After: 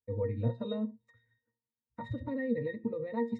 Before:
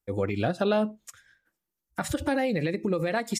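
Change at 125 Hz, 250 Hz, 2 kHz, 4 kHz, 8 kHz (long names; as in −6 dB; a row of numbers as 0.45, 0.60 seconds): −3.5 dB, −6.0 dB, −13.0 dB, −15.0 dB, below −40 dB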